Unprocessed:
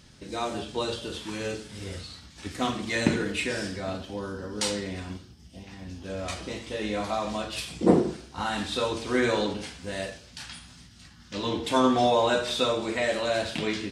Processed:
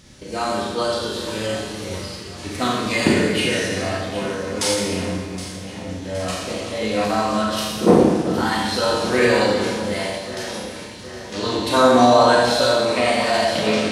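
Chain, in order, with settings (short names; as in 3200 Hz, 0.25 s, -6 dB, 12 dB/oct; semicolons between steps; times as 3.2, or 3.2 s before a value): echo with dull and thin repeats by turns 0.384 s, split 1900 Hz, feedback 75%, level -10.5 dB; Schroeder reverb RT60 1.2 s, combs from 29 ms, DRR -1.5 dB; formant shift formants +2 st; gain +4.5 dB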